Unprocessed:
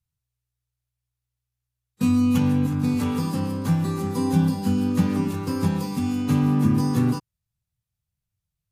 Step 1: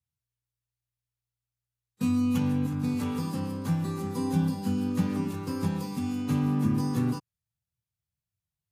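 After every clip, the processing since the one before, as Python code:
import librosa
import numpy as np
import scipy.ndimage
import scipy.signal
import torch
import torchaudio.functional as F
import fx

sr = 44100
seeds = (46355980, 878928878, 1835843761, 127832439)

y = scipy.signal.sosfilt(scipy.signal.butter(2, 67.0, 'highpass', fs=sr, output='sos'), x)
y = y * librosa.db_to_amplitude(-6.0)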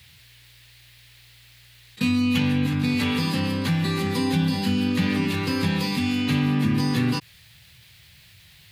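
y = fx.band_shelf(x, sr, hz=2800.0, db=13.0, octaves=1.7)
y = fx.env_flatten(y, sr, amount_pct=50)
y = y * librosa.db_to_amplitude(2.0)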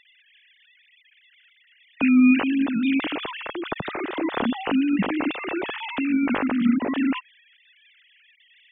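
y = fx.sine_speech(x, sr)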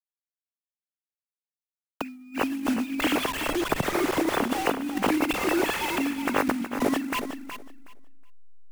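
y = fx.delta_hold(x, sr, step_db=-31.0)
y = fx.over_compress(y, sr, threshold_db=-26.0, ratio=-0.5)
y = fx.echo_feedback(y, sr, ms=369, feedback_pct=18, wet_db=-9.5)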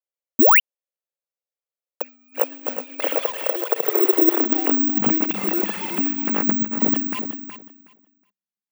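y = fx.filter_sweep_highpass(x, sr, from_hz=520.0, to_hz=200.0, start_s=3.59, end_s=5.22, q=6.3)
y = fx.spec_paint(y, sr, seeds[0], shape='rise', start_s=0.39, length_s=0.21, low_hz=210.0, high_hz=3200.0, level_db=-11.0)
y = (np.kron(scipy.signal.resample_poly(y, 1, 2), np.eye(2)[0]) * 2)[:len(y)]
y = y * librosa.db_to_amplitude(-4.0)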